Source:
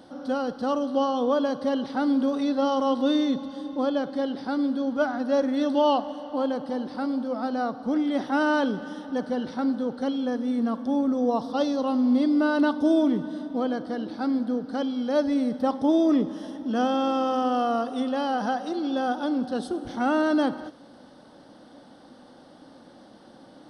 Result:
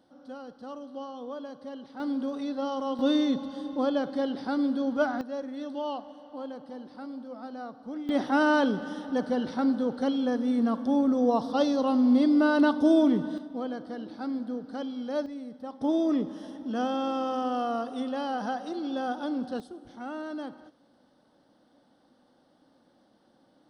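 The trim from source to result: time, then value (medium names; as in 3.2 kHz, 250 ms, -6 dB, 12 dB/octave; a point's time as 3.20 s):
-15 dB
from 2.00 s -7.5 dB
from 2.99 s -1.5 dB
from 5.21 s -12 dB
from 8.09 s 0 dB
from 13.38 s -7 dB
from 15.26 s -15 dB
from 15.81 s -5 dB
from 19.60 s -14 dB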